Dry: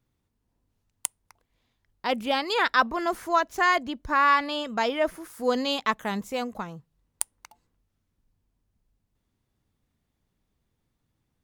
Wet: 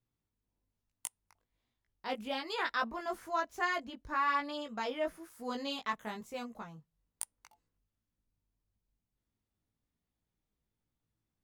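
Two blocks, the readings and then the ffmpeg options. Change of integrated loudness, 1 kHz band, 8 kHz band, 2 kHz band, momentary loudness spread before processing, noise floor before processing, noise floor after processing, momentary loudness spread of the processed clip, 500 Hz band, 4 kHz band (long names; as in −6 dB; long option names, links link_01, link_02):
−11.0 dB, −11.0 dB, −11.0 dB, −11.0 dB, 12 LU, −78 dBFS, below −85 dBFS, 12 LU, −11.0 dB, −11.0 dB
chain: -af "flanger=delay=17:depth=2.3:speed=1.1,volume=-8dB"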